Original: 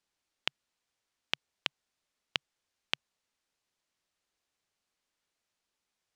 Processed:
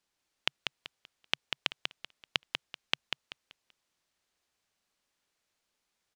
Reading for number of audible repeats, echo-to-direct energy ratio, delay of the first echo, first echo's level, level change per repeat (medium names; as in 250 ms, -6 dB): 3, -4.5 dB, 192 ms, -5.0 dB, -10.5 dB